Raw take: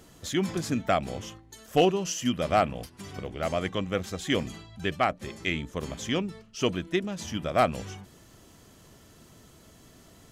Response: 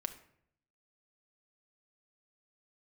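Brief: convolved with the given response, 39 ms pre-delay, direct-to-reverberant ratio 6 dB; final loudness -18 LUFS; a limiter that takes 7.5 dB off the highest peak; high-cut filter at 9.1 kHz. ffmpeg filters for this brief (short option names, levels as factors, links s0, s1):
-filter_complex "[0:a]lowpass=9100,alimiter=limit=0.106:level=0:latency=1,asplit=2[s0][s1];[1:a]atrim=start_sample=2205,adelay=39[s2];[s1][s2]afir=irnorm=-1:irlink=0,volume=0.531[s3];[s0][s3]amix=inputs=2:normalize=0,volume=5.01"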